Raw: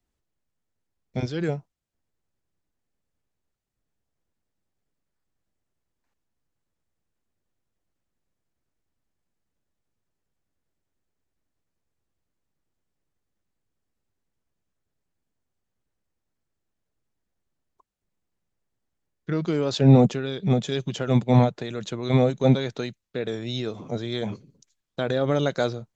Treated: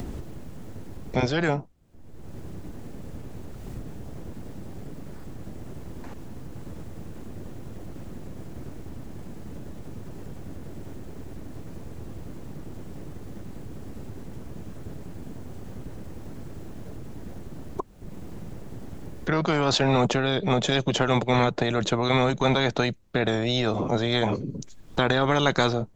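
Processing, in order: upward compressor, threshold -34 dBFS; FFT filter 300 Hz 0 dB, 1.6 kHz -13 dB, 4.9 kHz -17 dB; spectrum-flattening compressor 4:1

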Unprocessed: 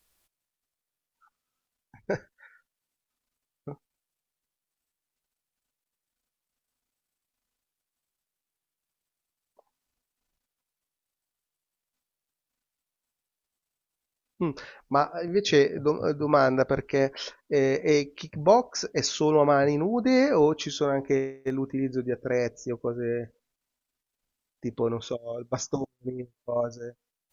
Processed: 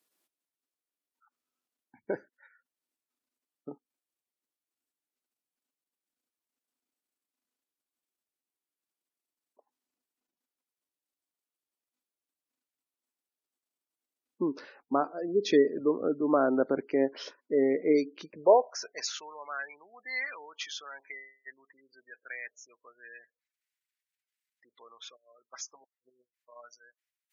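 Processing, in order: spectral gate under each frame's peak -25 dB strong; high-pass sweep 280 Hz -> 1.9 kHz, 18.20–19.38 s; trim -6.5 dB

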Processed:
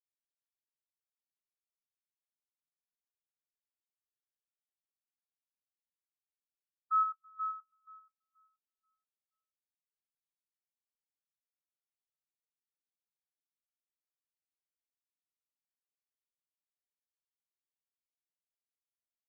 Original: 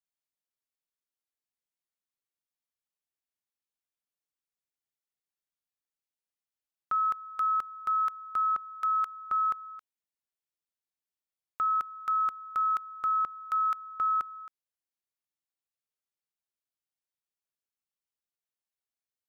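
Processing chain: tilt shelf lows -6.5 dB, about 780 Hz; peak limiter -28.5 dBFS, peak gain reduction 9.5 dB; low-pass sweep 1.3 kHz -> 250 Hz, 7.23–10.42 s; on a send: delay 119 ms -9.5 dB; on the sum: spectral contrast expander 2.5:1; trim -2 dB

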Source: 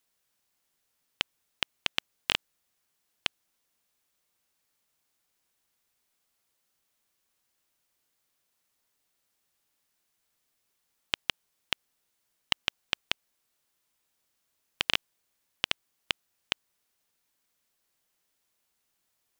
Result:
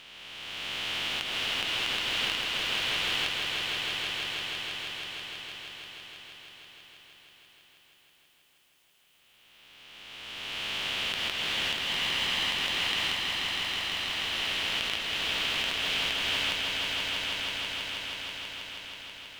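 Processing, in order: reverse spectral sustain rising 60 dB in 2.67 s; compression, threshold -30 dBFS, peak gain reduction 13.5 dB; on a send: echo with a slow build-up 161 ms, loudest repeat 5, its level -7 dB

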